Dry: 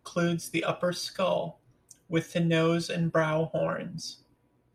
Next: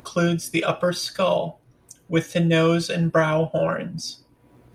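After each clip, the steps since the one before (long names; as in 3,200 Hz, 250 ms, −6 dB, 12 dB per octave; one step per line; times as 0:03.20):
upward compression, threshold −47 dBFS
level +6.5 dB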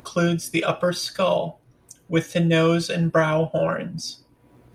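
no processing that can be heard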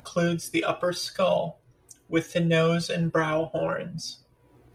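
flanger 0.73 Hz, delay 1.3 ms, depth 1.6 ms, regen −24%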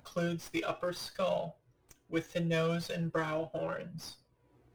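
windowed peak hold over 3 samples
level −9 dB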